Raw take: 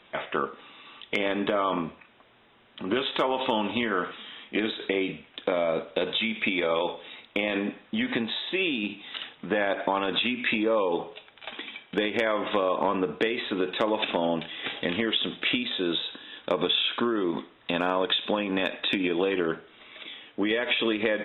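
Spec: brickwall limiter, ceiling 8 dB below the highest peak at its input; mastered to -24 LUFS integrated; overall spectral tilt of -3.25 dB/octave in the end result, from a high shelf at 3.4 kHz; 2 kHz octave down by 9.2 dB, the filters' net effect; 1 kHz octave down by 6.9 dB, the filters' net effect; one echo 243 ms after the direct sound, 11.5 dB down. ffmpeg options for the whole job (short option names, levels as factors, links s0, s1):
-af "equalizer=f=1000:t=o:g=-6,equalizer=f=2000:t=o:g=-8,highshelf=f=3400:g=-7,alimiter=limit=0.0841:level=0:latency=1,aecho=1:1:243:0.266,volume=2.66"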